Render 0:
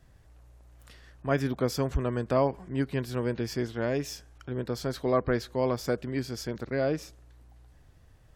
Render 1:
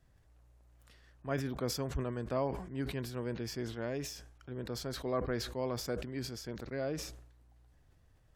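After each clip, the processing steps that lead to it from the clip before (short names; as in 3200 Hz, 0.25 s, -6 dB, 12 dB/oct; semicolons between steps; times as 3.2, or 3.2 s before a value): sustainer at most 67 dB/s; gain -9 dB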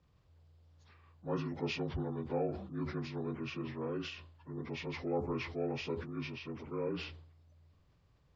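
inharmonic rescaling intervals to 77%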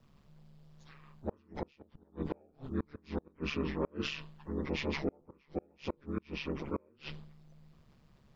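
flipped gate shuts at -29 dBFS, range -35 dB; ring modulator 71 Hz; gain +9 dB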